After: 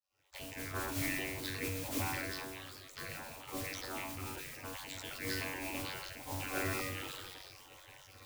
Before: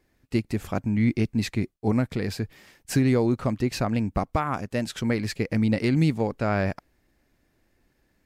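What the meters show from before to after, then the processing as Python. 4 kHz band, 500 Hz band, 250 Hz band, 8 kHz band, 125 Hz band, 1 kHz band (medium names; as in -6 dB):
-4.0 dB, -16.0 dB, -20.5 dB, -2.0 dB, -19.5 dB, -11.5 dB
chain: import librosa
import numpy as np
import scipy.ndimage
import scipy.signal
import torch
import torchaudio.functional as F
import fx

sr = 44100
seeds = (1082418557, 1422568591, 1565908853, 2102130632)

y = fx.recorder_agc(x, sr, target_db=-18.0, rise_db_per_s=54.0, max_gain_db=30)
y = scipy.signal.sosfilt(scipy.signal.butter(2, 5200.0, 'lowpass', fs=sr, output='sos'), y)
y = fx.phaser_stages(y, sr, stages=6, low_hz=390.0, high_hz=1400.0, hz=0.67, feedback_pct=20)
y = fx.stiff_resonator(y, sr, f0_hz=210.0, decay_s=0.68, stiffness=0.008)
y = fx.vocoder(y, sr, bands=32, carrier='saw', carrier_hz=94.7)
y = fx.mod_noise(y, sr, seeds[0], snr_db=24)
y = fx.spec_gate(y, sr, threshold_db=-25, keep='weak')
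y = fx.low_shelf(y, sr, hz=210.0, db=11.0)
y = fx.sustainer(y, sr, db_per_s=23.0)
y = F.gain(torch.from_numpy(y), 18.0).numpy()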